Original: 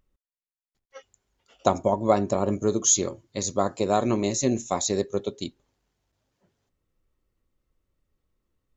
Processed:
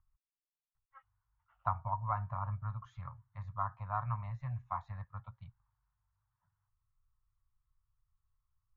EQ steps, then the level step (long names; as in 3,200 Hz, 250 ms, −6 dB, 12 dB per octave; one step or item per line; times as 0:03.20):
Chebyshev band-stop filter 120–990 Hz, order 3
low-pass filter 1,400 Hz 24 dB per octave
−3.0 dB